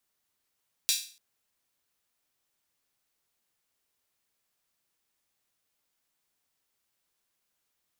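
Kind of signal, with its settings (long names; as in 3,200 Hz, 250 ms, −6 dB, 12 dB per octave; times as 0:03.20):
open synth hi-hat length 0.29 s, high-pass 3,700 Hz, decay 0.41 s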